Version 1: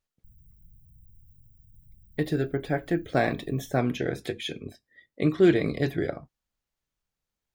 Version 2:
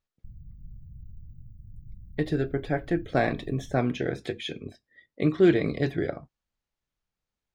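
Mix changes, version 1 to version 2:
background +10.5 dB; master: add air absorption 56 m

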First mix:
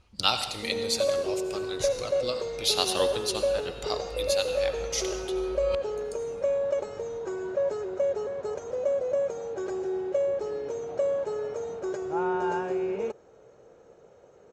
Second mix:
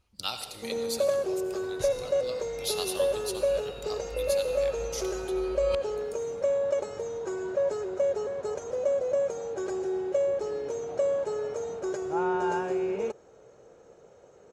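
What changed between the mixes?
speech -10.0 dB; master: remove air absorption 56 m

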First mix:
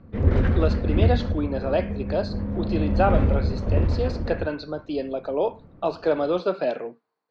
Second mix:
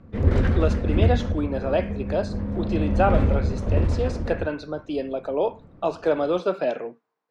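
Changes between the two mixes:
speech: add bell 4400 Hz -12.5 dB 0.28 oct; master: remove air absorption 120 m

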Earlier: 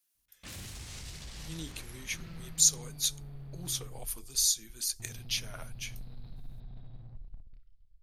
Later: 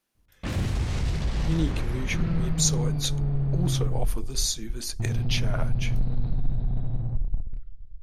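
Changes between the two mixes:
speech -3.0 dB; master: remove pre-emphasis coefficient 0.9

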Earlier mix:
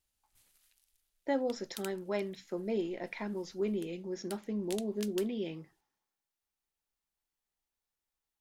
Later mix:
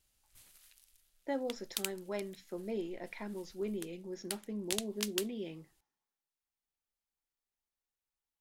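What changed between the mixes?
speech -4.5 dB; background +8.0 dB

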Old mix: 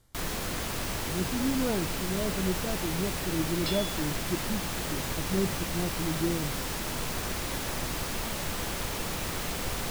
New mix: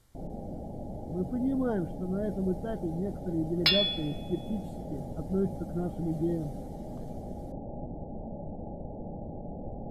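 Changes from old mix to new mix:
first sound: add rippled Chebyshev low-pass 840 Hz, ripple 6 dB; second sound +11.5 dB

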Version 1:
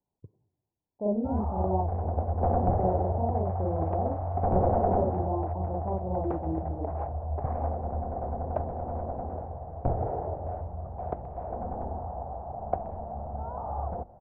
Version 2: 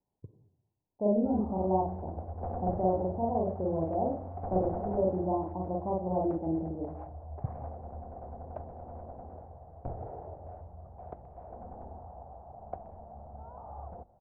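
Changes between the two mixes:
speech: send +10.5 dB; background -11.0 dB

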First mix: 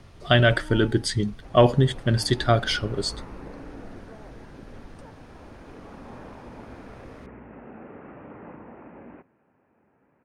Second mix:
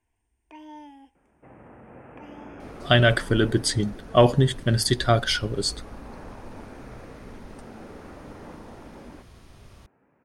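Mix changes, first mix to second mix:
speech: entry +2.60 s; master: add high shelf 8100 Hz +10.5 dB

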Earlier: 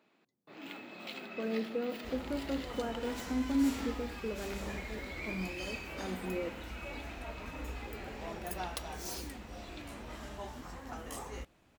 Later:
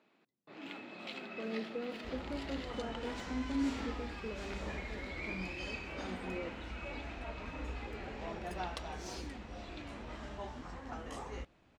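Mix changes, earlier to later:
speech -5.0 dB; first sound: add high shelf 8700 Hz +9 dB; master: add air absorption 94 m

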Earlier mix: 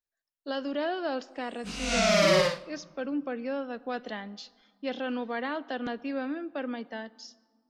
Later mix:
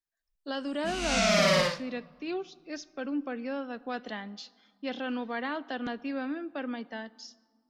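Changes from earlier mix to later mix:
background: entry -0.80 s; master: add bell 520 Hz -3.5 dB 0.76 oct

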